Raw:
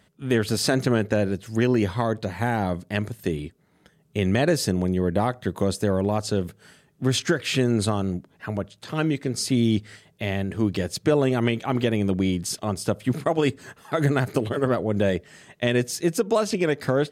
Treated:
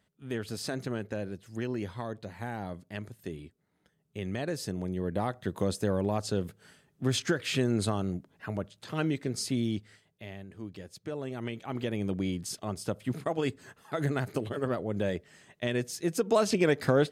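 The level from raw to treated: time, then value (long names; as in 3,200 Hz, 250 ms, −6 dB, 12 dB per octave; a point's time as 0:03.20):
0:04.47 −13 dB
0:05.56 −6 dB
0:09.34 −6 dB
0:10.45 −18.5 dB
0:10.98 −18.5 dB
0:12.04 −8.5 dB
0:15.99 −8.5 dB
0:16.44 −2 dB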